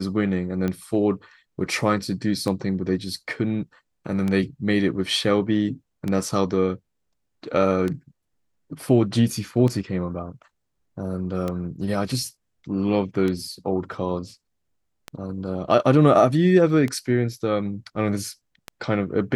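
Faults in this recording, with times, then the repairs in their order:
tick 33 1/3 rpm -14 dBFS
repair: de-click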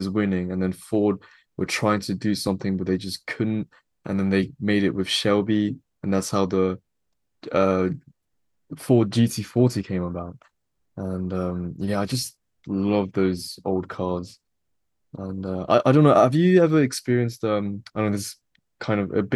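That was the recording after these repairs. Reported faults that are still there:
nothing left

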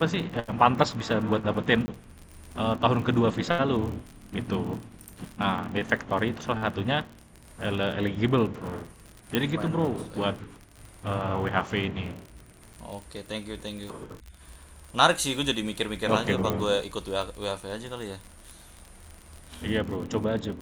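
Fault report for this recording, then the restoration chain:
crackle 53 per s -34 dBFS
1.86–1.88 s: dropout 20 ms
9.35 s: pop -10 dBFS
16.50 s: pop -13 dBFS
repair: de-click; interpolate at 1.86 s, 20 ms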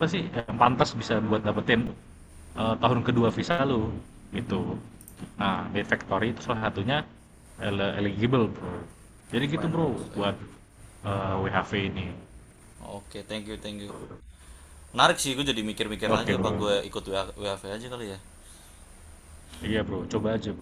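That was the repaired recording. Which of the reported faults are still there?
9.35 s: pop
16.50 s: pop

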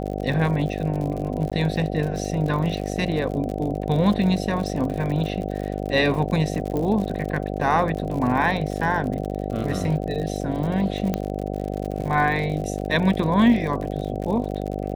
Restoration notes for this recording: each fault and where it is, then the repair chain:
buzz 50 Hz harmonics 15 -28 dBFS
crackle 59 per s -29 dBFS
1.50–1.52 s: dropout 16 ms
6.77 s: pop -16 dBFS
11.14 s: pop -11 dBFS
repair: de-click; de-hum 50 Hz, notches 15; interpolate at 1.50 s, 16 ms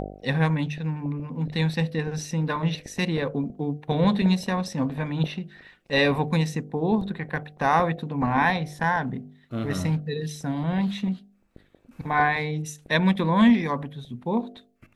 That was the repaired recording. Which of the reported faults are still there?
nothing left

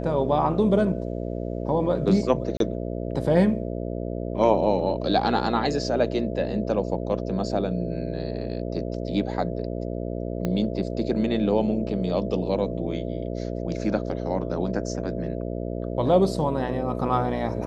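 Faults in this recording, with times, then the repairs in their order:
buzz 60 Hz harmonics 11 -30 dBFS
2.57–2.60 s: dropout 32 ms
10.45 s: pop -14 dBFS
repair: de-click; de-hum 60 Hz, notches 11; interpolate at 2.57 s, 32 ms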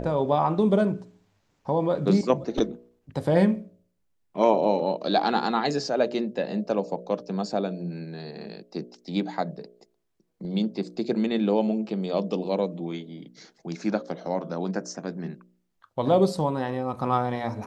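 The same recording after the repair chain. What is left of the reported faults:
10.45 s: pop

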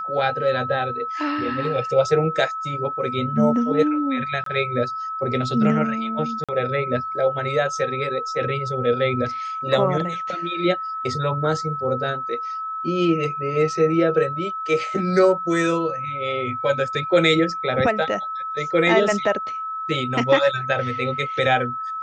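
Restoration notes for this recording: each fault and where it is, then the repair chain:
whine 1.3 kHz -26 dBFS
4.44–4.46 s: dropout 23 ms
6.44–6.49 s: dropout 46 ms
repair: band-stop 1.3 kHz, Q 30; interpolate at 4.44 s, 23 ms; interpolate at 6.44 s, 46 ms

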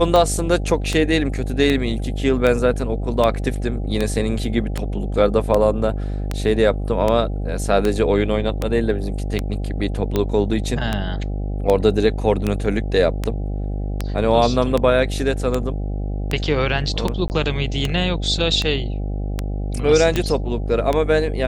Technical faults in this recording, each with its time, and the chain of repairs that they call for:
buzz 50 Hz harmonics 16 -24 dBFS
tick 78 rpm -7 dBFS
17.28–17.30 s: dropout 19 ms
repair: de-click; de-hum 50 Hz, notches 16; interpolate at 17.28 s, 19 ms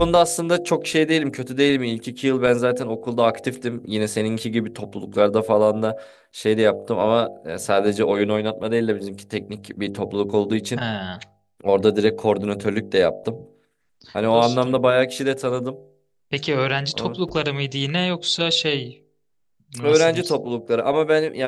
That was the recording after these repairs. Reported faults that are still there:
nothing left

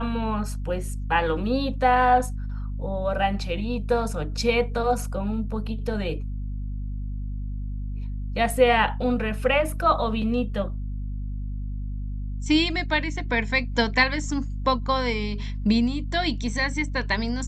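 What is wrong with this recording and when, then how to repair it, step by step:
hum 50 Hz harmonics 5 -30 dBFS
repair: de-hum 50 Hz, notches 5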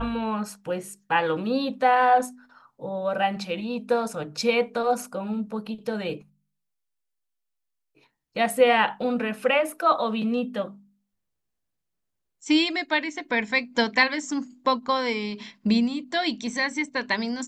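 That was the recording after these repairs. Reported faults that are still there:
nothing left

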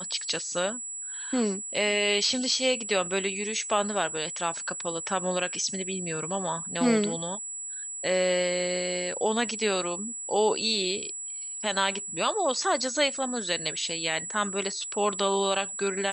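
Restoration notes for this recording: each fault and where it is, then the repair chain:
whine 7.8 kHz -34 dBFS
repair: band-stop 7.8 kHz, Q 30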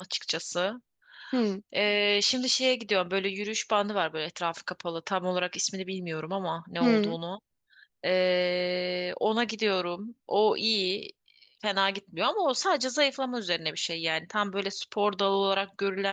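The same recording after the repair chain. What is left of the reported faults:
nothing left

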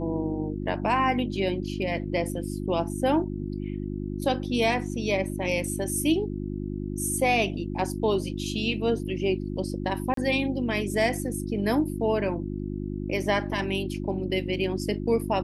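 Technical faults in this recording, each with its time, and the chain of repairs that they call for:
hum 50 Hz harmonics 7 -32 dBFS
10.14–10.17 s: dropout 33 ms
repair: de-hum 50 Hz, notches 7; interpolate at 10.14 s, 33 ms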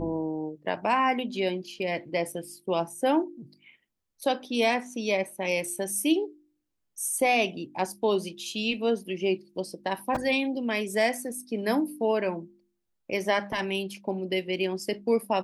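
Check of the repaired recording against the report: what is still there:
nothing left

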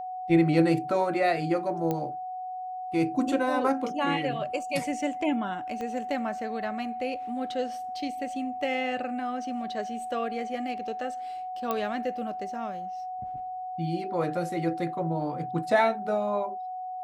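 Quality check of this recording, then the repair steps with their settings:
whine 740 Hz -33 dBFS
1.91 s: pop -16 dBFS
5.81 s: pop -23 dBFS
11.71 s: pop -15 dBFS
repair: de-click; band-stop 740 Hz, Q 30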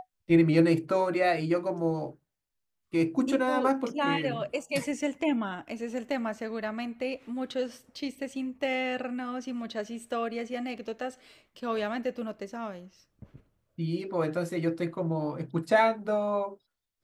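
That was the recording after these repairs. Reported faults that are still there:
5.81 s: pop

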